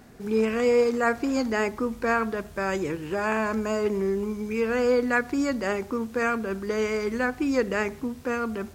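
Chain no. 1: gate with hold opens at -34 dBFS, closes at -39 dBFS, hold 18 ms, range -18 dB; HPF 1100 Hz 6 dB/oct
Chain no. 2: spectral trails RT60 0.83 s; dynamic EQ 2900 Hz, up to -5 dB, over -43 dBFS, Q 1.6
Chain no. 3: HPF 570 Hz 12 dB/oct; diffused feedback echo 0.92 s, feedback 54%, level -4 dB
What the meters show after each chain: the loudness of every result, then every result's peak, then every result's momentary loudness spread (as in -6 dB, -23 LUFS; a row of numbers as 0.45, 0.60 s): -32.0, -25.0, -28.5 LUFS; -13.5, -9.0, -10.5 dBFS; 8, 6, 5 LU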